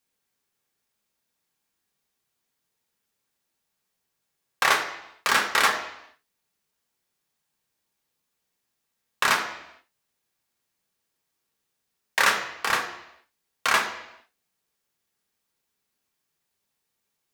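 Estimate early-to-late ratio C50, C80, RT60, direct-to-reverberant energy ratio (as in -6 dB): 8.5 dB, 10.5 dB, 0.85 s, 1.5 dB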